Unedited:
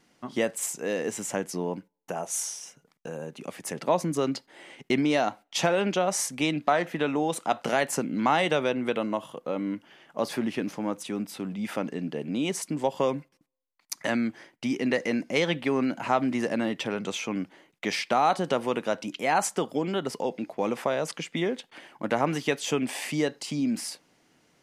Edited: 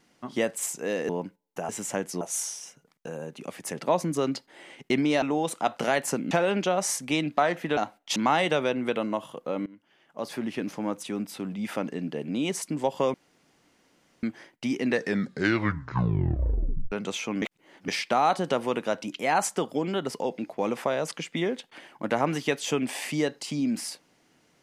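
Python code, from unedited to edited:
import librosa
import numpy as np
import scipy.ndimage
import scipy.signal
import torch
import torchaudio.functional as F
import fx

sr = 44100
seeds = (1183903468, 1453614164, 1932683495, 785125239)

y = fx.edit(x, sr, fx.move(start_s=1.09, length_s=0.52, to_s=2.21),
    fx.swap(start_s=5.22, length_s=0.39, other_s=7.07, other_length_s=1.09),
    fx.fade_in_from(start_s=9.66, length_s=1.12, floor_db=-22.0),
    fx.room_tone_fill(start_s=13.14, length_s=1.09),
    fx.tape_stop(start_s=14.85, length_s=2.07),
    fx.reverse_span(start_s=17.42, length_s=0.46), tone=tone)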